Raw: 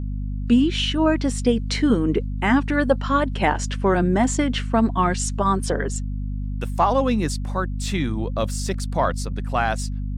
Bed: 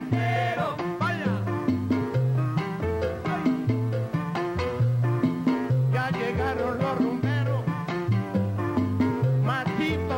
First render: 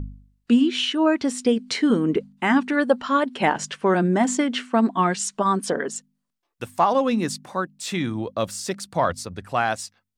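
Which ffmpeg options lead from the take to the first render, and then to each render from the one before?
ffmpeg -i in.wav -af "bandreject=frequency=50:width_type=h:width=4,bandreject=frequency=100:width_type=h:width=4,bandreject=frequency=150:width_type=h:width=4,bandreject=frequency=200:width_type=h:width=4,bandreject=frequency=250:width_type=h:width=4" out.wav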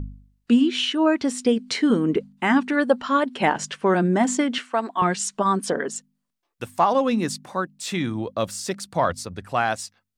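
ffmpeg -i in.wav -filter_complex "[0:a]asettb=1/sr,asplit=3[link_01][link_02][link_03];[link_01]atrim=end=4.584[link_04];[link_02]atrim=start=4.58:end=5.02,asetpts=PTS-STARTPTS,afade=type=in:duration=0.004:curve=qsin,afade=type=out:start_time=0.436:duration=0.004:curve=qsin,highpass=500[link_05];[link_03]atrim=start=5.016[link_06];[link_04][link_05]acrossfade=duration=0.004:curve1=hsin:curve2=qsin[link_07];[link_07][link_06]acrossfade=duration=0.004:curve1=qsin:curve2=hsin" out.wav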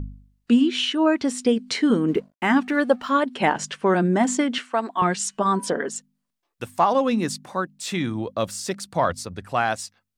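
ffmpeg -i in.wav -filter_complex "[0:a]asettb=1/sr,asplit=3[link_01][link_02][link_03];[link_01]atrim=end=2.084[link_04];[link_02]atrim=start=2.08:end=3.11,asetpts=PTS-STARTPTS,afade=type=in:duration=0.004:curve=qsin,afade=type=out:start_time=1.026:duration=0.004:curve=qsin,aeval=exprs='sgn(val(0))*max(abs(val(0))-0.00316,0)':channel_layout=same[link_05];[link_03]atrim=start=3.106[link_06];[link_04][link_05]acrossfade=duration=0.004:curve1=hsin:curve2=qsin[link_07];[link_07][link_06]acrossfade=duration=0.004:curve1=qsin:curve2=hsin,asettb=1/sr,asplit=3[link_08][link_09][link_10];[link_08]atrim=end=5.214[link_11];[link_09]atrim=start=5.21:end=5.89,asetpts=PTS-STARTPTS,afade=type=in:duration=0.004:curve=qsin,afade=type=out:start_time=0.676:duration=0.004:curve=qsin,bandreject=frequency=139.6:width_type=h:width=4,bandreject=frequency=279.2:width_type=h:width=4,bandreject=frequency=418.8:width_type=h:width=4,bandreject=frequency=558.4:width_type=h:width=4,bandreject=frequency=698:width_type=h:width=4,bandreject=frequency=837.6:width_type=h:width=4,bandreject=frequency=977.2:width_type=h:width=4,bandreject=frequency=1116.8:width_type=h:width=4,bandreject=frequency=1256.4:width_type=h:width=4,bandreject=frequency=1396:width_type=h:width=4,bandreject=frequency=1535.6:width_type=h:width=4,bandreject=frequency=1675.2:width_type=h:width=4,bandreject=frequency=1814.8:width_type=h:width=4,bandreject=frequency=1954.4:width_type=h:width=4,bandreject=frequency=2094:width_type=h:width=4,bandreject=frequency=2233.6:width_type=h:width=4,bandreject=frequency=2373.2:width_type=h:width=4,bandreject=frequency=2512.8:width_type=h:width=4,bandreject=frequency=2652.4:width_type=h:width=4,bandreject=frequency=2792:width_type=h:width=4,bandreject=frequency=2931.6:width_type=h:width=4,bandreject=frequency=3071.2:width_type=h:width=4,bandreject=frequency=3210.8:width_type=h:width=4[link_12];[link_10]atrim=start=5.886[link_13];[link_11][link_12]acrossfade=duration=0.004:curve1=hsin:curve2=qsin[link_14];[link_14][link_13]acrossfade=duration=0.004:curve1=qsin:curve2=hsin" out.wav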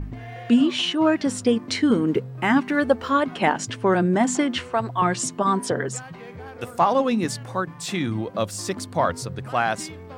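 ffmpeg -i in.wav -i bed.wav -filter_complex "[1:a]volume=-12.5dB[link_01];[0:a][link_01]amix=inputs=2:normalize=0" out.wav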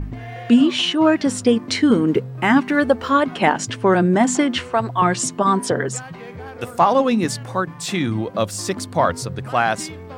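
ffmpeg -i in.wav -af "volume=4dB,alimiter=limit=-3dB:level=0:latency=1" out.wav

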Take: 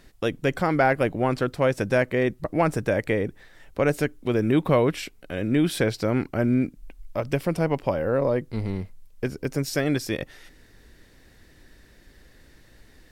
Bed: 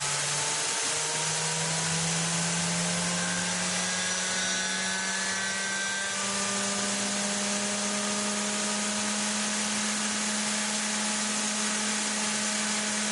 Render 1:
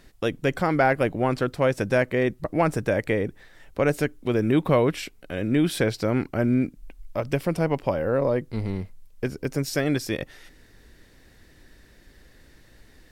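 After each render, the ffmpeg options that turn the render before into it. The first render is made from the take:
ffmpeg -i in.wav -af anull out.wav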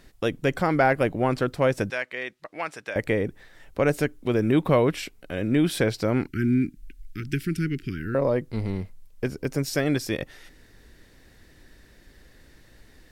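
ffmpeg -i in.wav -filter_complex "[0:a]asettb=1/sr,asplit=3[link_01][link_02][link_03];[link_01]atrim=end=1.904[link_04];[link_02]atrim=start=1.9:end=2.96,asetpts=PTS-STARTPTS,afade=type=in:duration=0.004:curve=qsin,afade=type=out:start_time=1.056:duration=0.004:curve=qsin,bandpass=frequency=3000:width_type=q:width=0.74[link_05];[link_03]atrim=start=2.956[link_06];[link_04][link_05]acrossfade=duration=0.004:curve1=hsin:curve2=qsin[link_07];[link_07][link_06]acrossfade=duration=0.004:curve1=qsin:curve2=hsin,asettb=1/sr,asplit=3[link_08][link_09][link_10];[link_08]atrim=end=6.274[link_11];[link_09]atrim=start=6.27:end=8.15,asetpts=PTS-STARTPTS,afade=type=in:duration=0.004:curve=qsin,afade=type=out:start_time=1.876:duration=0.004:curve=qsin,asuperstop=centerf=730:order=12:qfactor=0.71[link_12];[link_10]atrim=start=8.146[link_13];[link_11][link_12]acrossfade=duration=0.004:curve1=hsin:curve2=qsin[link_14];[link_14][link_13]acrossfade=duration=0.004:curve1=qsin:curve2=hsin" out.wav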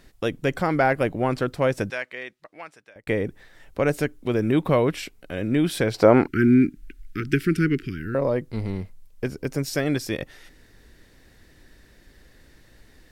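ffmpeg -i in.wav -filter_complex "[0:a]asettb=1/sr,asplit=3[link_01][link_02][link_03];[link_01]atrim=end=5.944[link_04];[link_02]atrim=start=5.94:end=7.87,asetpts=PTS-STARTPTS,afade=type=in:duration=0.004:curve=qsin,afade=type=out:start_time=1.926:duration=0.004:curve=qsin,equalizer=frequency=740:width_type=o:width=2.7:gain=14[link_05];[link_03]atrim=start=7.866[link_06];[link_04][link_05]acrossfade=duration=0.004:curve1=hsin:curve2=qsin[link_07];[link_07][link_06]acrossfade=duration=0.004:curve1=qsin:curve2=hsin,asplit=2[link_08][link_09];[link_08]atrim=end=3.07,asetpts=PTS-STARTPTS,afade=type=out:start_time=1.87:duration=1.2[link_10];[link_09]atrim=start=3.07,asetpts=PTS-STARTPTS,afade=type=in:duration=0.004:curve=hsin[link_11];[link_10][link_11]concat=n=2:v=0:a=1" out.wav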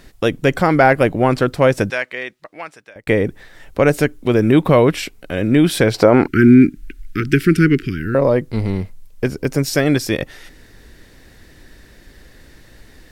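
ffmpeg -i in.wav -af "alimiter=level_in=8.5dB:limit=-1dB:release=50:level=0:latency=1" out.wav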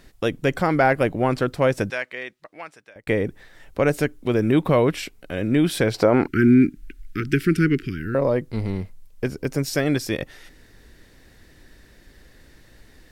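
ffmpeg -i in.wav -af "volume=-6dB" out.wav

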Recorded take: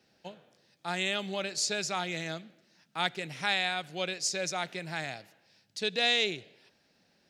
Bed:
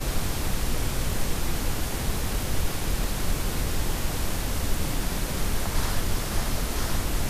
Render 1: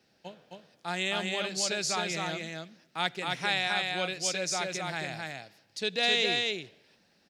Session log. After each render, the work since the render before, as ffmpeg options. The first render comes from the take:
ffmpeg -i in.wav -af "aecho=1:1:264:0.708" out.wav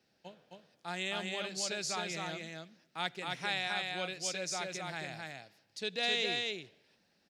ffmpeg -i in.wav -af "volume=-6dB" out.wav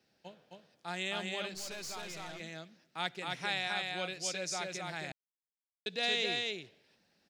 ffmpeg -i in.wav -filter_complex "[0:a]asettb=1/sr,asplit=3[link_01][link_02][link_03];[link_01]atrim=end=1.544[link_04];[link_02]atrim=start=1.54:end=2.4,asetpts=PTS-STARTPTS,afade=type=in:duration=0.004:curve=qsin,afade=type=out:start_time=0.856:duration=0.004:curve=qsin,aeval=exprs='(tanh(89.1*val(0)+0.55)-tanh(0.55))/89.1':channel_layout=same[link_05];[link_03]atrim=start=2.396[link_06];[link_04][link_05]acrossfade=duration=0.004:curve1=hsin:curve2=qsin[link_07];[link_07][link_06]acrossfade=duration=0.004:curve1=qsin:curve2=hsin,asplit=3[link_08][link_09][link_10];[link_08]atrim=end=5.12,asetpts=PTS-STARTPTS,afade=type=out:start_time=5.116:duration=0.004:curve=hsin[link_11];[link_09]atrim=start=5.12:end=5.86,asetpts=PTS-STARTPTS,volume=0[link_12];[link_10]atrim=start=5.86,asetpts=PTS-STARTPTS,afade=type=in:duration=0.004:curve=hsin[link_13];[link_11][link_12][link_13]concat=n=3:v=0:a=1" out.wav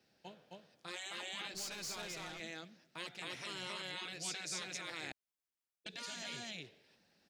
ffmpeg -i in.wav -af "afftfilt=real='re*lt(hypot(re,im),0.0316)':imag='im*lt(hypot(re,im),0.0316)':win_size=1024:overlap=0.75" out.wav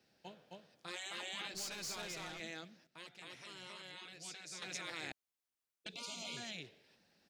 ffmpeg -i in.wav -filter_complex "[0:a]asettb=1/sr,asplit=3[link_01][link_02][link_03];[link_01]atrim=end=5.934[link_04];[link_02]atrim=start=5.93:end=6.37,asetpts=PTS-STARTPTS,afade=type=in:duration=0.004:curve=qsin,afade=type=out:start_time=0.436:duration=0.004:curve=qsin,asuperstop=centerf=1700:order=8:qfactor=2.2[link_05];[link_03]atrim=start=6.366[link_06];[link_04][link_05]acrossfade=duration=0.004:curve1=hsin:curve2=qsin[link_07];[link_07][link_06]acrossfade=duration=0.004:curve1=qsin:curve2=hsin,asplit=3[link_08][link_09][link_10];[link_08]atrim=end=2.872[link_11];[link_09]atrim=start=2.868:end=4.622,asetpts=PTS-STARTPTS,volume=-7.5dB[link_12];[link_10]atrim=start=4.618[link_13];[link_11][link_12]acrossfade=duration=0.004:curve1=hsin:curve2=hsin[link_14];[link_14][link_13]acrossfade=duration=0.004:curve1=hsin:curve2=hsin" out.wav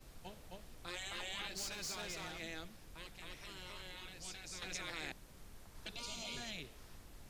ffmpeg -i in.wav -i bed.wav -filter_complex "[1:a]volume=-30dB[link_01];[0:a][link_01]amix=inputs=2:normalize=0" out.wav

